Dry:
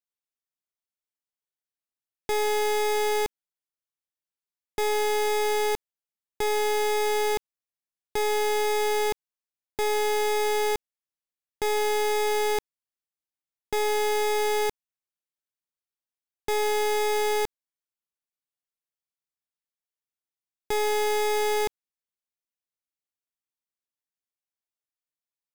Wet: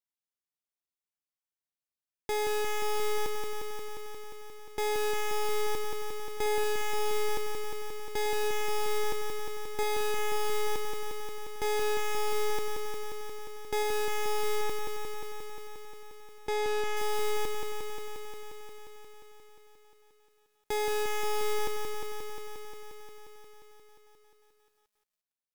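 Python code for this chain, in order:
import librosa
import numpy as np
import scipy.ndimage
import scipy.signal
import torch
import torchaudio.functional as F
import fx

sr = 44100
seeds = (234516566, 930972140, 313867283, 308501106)

y = fx.high_shelf(x, sr, hz=8800.0, db=-11.0, at=(14.61, 16.97))
y = fx.echo_crushed(y, sr, ms=177, feedback_pct=80, bits=11, wet_db=-4.0)
y = F.gain(torch.from_numpy(y), -5.0).numpy()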